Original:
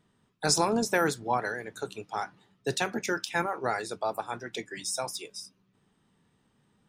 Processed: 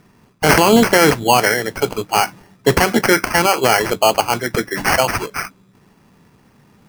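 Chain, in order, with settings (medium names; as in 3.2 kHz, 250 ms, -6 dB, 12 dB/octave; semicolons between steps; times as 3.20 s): sample-and-hold 12×; loudness maximiser +18.5 dB; trim -1 dB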